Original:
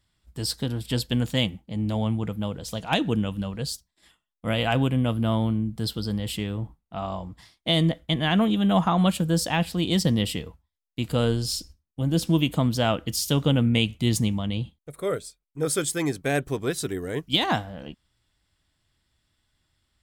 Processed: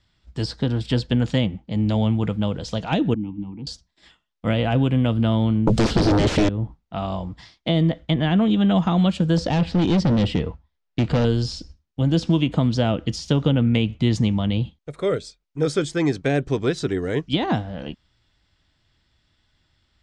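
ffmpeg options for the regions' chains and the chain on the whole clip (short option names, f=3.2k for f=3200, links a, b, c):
-filter_complex "[0:a]asettb=1/sr,asplit=3[a][b][c];[a]atrim=end=3.144[d];[b]atrim=start=3.14:end=3.67,asetpts=PTS-STARTPTS,afade=t=in:d=0.004:c=qsin,afade=t=out:st=0.526:d=0.004:c=qsin,aemphasis=mode=reproduction:type=riaa,acrossover=split=240|3000[e][f][g];[f]acompressor=threshold=-30dB:ratio=3:attack=3.2:release=140:knee=2.83:detection=peak[h];[e][h][g]amix=inputs=3:normalize=0,asplit=3[i][j][k];[i]bandpass=f=300:t=q:w=8,volume=0dB[l];[j]bandpass=f=870:t=q:w=8,volume=-6dB[m];[k]bandpass=f=2.24k:t=q:w=8,volume=-9dB[n];[l][m][n]amix=inputs=3:normalize=0[o];[c]atrim=start=3.666[p];[d][o]acrossfade=d=0.004:c1=hsin:c2=qsin[q];[q][p]acrossfade=d=0.004:c1=qsin:c2=hsin,asettb=1/sr,asplit=3[r][s][t];[r]atrim=end=5.674[u];[s]atrim=start=5.67:end=6.49,asetpts=PTS-STARTPTS,afade=t=in:d=0.004:c=qsin,afade=t=out:st=0.816:d=0.004:c=qsin,aemphasis=mode=production:type=cd,aeval=exprs='0.211*sin(PI/2*8.91*val(0)/0.211)':c=same[v];[t]atrim=start=6.486[w];[u][v]acrossfade=d=0.004:c1=hsin:c2=qsin[x];[x][w]acrossfade=d=0.004:c1=qsin:c2=hsin,asettb=1/sr,asplit=3[y][z][aa];[y]atrim=end=9.374[ab];[z]atrim=start=9.37:end=11.25,asetpts=PTS-STARTPTS,afade=t=in:d=0.004:c=qsin,afade=t=out:st=1.876:d=0.004:c=qsin,lowpass=f=2.1k:p=1,acontrast=38,asoftclip=type=hard:threshold=-20dB[ac];[aa]atrim=start=11.246[ad];[ab][ac]acrossfade=d=0.004:c1=hsin:c2=qsin[ae];[ae][ad]acrossfade=d=0.004:c1=qsin:c2=hsin,lowpass=f=6.2k:w=0.5412,lowpass=f=6.2k:w=1.3066,bandreject=f=1.1k:w=25,acrossover=split=540|2000[af][ag][ah];[af]acompressor=threshold=-22dB:ratio=4[ai];[ag]acompressor=threshold=-37dB:ratio=4[aj];[ah]acompressor=threshold=-40dB:ratio=4[ak];[ai][aj][ak]amix=inputs=3:normalize=0,volume=6.5dB"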